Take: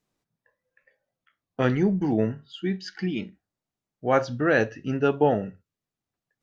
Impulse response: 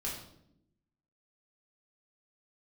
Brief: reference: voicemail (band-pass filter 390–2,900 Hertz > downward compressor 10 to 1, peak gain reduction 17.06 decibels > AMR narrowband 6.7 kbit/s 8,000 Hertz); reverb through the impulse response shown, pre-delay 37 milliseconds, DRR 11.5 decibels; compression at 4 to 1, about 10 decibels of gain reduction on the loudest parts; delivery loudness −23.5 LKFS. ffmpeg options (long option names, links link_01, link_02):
-filter_complex "[0:a]acompressor=threshold=-28dB:ratio=4,asplit=2[link_01][link_02];[1:a]atrim=start_sample=2205,adelay=37[link_03];[link_02][link_03]afir=irnorm=-1:irlink=0,volume=-13.5dB[link_04];[link_01][link_04]amix=inputs=2:normalize=0,highpass=390,lowpass=2900,acompressor=threshold=-43dB:ratio=10,volume=26.5dB" -ar 8000 -c:a libopencore_amrnb -b:a 6700